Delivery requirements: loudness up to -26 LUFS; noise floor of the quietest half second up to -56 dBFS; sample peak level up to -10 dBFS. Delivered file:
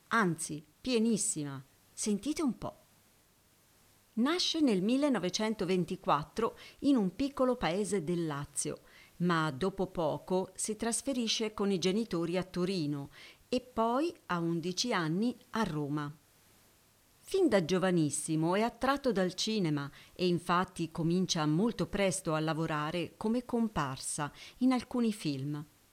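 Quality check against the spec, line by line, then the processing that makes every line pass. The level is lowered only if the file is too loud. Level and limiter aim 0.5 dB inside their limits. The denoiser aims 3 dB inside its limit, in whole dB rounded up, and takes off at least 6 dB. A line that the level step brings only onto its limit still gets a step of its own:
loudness -32.5 LUFS: pass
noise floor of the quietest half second -67 dBFS: pass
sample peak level -14.0 dBFS: pass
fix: none needed

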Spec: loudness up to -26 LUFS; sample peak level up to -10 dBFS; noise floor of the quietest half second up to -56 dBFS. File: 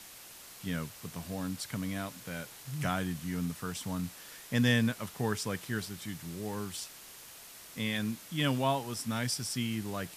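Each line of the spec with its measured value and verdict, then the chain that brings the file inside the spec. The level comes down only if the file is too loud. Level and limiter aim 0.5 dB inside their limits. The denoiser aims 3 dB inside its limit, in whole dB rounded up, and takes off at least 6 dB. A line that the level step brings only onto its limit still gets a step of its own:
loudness -34.5 LUFS: pass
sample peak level -15.0 dBFS: pass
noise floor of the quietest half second -51 dBFS: fail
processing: noise reduction 8 dB, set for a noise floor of -51 dBFS

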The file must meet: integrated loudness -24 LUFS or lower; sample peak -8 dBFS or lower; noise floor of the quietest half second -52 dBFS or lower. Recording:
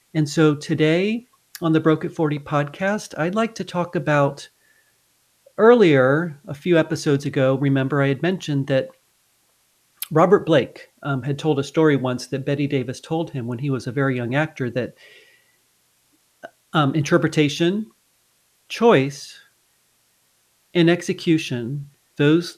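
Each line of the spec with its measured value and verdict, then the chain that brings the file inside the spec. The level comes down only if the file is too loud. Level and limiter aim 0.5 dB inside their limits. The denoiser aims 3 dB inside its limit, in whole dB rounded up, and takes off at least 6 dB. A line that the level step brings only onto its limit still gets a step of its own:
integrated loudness -20.5 LUFS: fail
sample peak -3.5 dBFS: fail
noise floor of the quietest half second -63 dBFS: pass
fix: trim -4 dB; peak limiter -8.5 dBFS

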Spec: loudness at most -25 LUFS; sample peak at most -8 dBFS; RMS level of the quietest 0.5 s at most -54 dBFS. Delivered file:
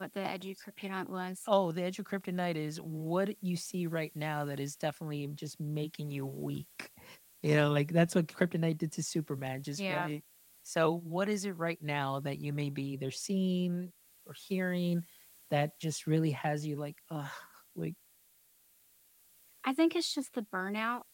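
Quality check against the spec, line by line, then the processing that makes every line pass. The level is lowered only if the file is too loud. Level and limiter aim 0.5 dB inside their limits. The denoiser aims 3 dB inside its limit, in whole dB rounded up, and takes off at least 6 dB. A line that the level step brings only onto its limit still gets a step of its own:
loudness -34.5 LUFS: pass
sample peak -14.5 dBFS: pass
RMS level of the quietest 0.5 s -66 dBFS: pass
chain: none needed

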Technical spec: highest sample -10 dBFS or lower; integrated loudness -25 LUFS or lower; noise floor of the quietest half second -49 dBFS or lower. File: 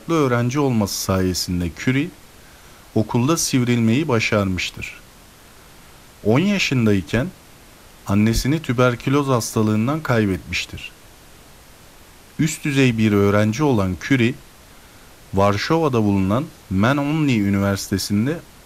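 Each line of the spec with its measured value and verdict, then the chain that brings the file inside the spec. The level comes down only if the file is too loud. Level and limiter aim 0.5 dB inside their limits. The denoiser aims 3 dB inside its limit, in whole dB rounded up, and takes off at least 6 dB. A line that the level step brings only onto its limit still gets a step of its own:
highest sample -4.5 dBFS: fail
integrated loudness -19.5 LUFS: fail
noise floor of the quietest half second -46 dBFS: fail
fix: trim -6 dB

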